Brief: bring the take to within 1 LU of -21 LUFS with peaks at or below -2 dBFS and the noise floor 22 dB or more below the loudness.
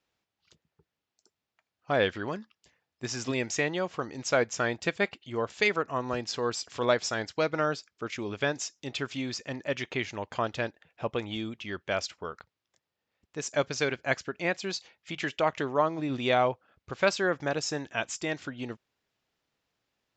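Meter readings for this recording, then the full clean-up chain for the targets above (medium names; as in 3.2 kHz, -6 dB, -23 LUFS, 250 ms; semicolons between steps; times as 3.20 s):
loudness -30.5 LUFS; peak level -9.5 dBFS; loudness target -21.0 LUFS
-> trim +9.5 dB; peak limiter -2 dBFS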